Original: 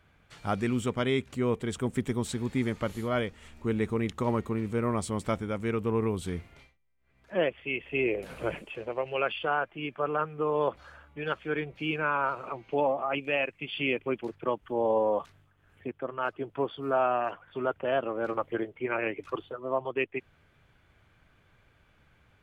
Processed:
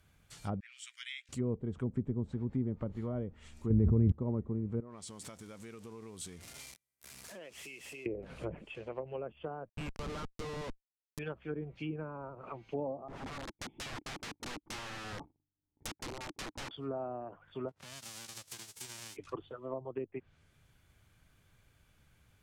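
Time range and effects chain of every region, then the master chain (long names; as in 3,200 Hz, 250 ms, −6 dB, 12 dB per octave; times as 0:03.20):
0:00.60–0:01.29: Butterworth high-pass 1,800 Hz + high-shelf EQ 4,900 Hz −11 dB + double-tracking delay 15 ms −14 dB
0:03.70–0:04.12: parametric band 61 Hz +13 dB 2.2 octaves + envelope flattener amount 100%
0:04.80–0:08.06: converter with a step at zero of −42 dBFS + high-pass filter 300 Hz 6 dB per octave + downward compressor 4 to 1, threshold −41 dBFS
0:09.69–0:11.19: spectral tilt +3.5 dB per octave + comparator with hysteresis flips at −36 dBFS
0:13.08–0:16.71: leveller curve on the samples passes 5 + formant resonators in series u + wrap-around overflow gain 31 dB
0:17.68–0:19.15: spectral envelope flattened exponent 0.1 + high-pass filter 57 Hz + downward compressor 10 to 1, threshold −38 dBFS
whole clip: high-shelf EQ 7,900 Hz +6 dB; treble cut that deepens with the level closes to 530 Hz, closed at −26 dBFS; bass and treble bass +6 dB, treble +13 dB; level −8 dB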